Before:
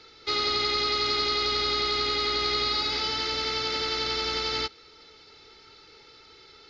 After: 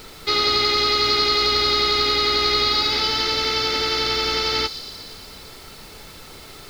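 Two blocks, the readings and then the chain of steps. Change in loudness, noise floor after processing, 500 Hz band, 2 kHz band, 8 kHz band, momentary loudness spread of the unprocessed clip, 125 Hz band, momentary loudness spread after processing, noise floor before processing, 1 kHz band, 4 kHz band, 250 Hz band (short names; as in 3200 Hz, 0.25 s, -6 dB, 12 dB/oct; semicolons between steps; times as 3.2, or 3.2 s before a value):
+7.5 dB, -41 dBFS, +7.0 dB, +7.0 dB, n/a, 3 LU, +7.5 dB, 9 LU, -53 dBFS, +7.0 dB, +7.5 dB, +7.0 dB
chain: added noise pink -50 dBFS; thin delay 0.118 s, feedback 72%, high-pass 5400 Hz, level -8 dB; gain +7 dB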